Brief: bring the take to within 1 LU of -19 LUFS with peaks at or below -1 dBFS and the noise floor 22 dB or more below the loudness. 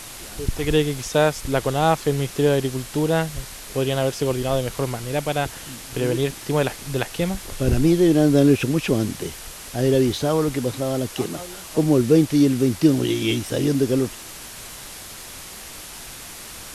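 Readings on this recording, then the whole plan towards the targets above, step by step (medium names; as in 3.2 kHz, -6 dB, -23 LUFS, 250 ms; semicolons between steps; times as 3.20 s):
noise floor -38 dBFS; noise floor target -44 dBFS; loudness -21.5 LUFS; peak level -5.0 dBFS; loudness target -19.0 LUFS
-> noise print and reduce 6 dB; trim +2.5 dB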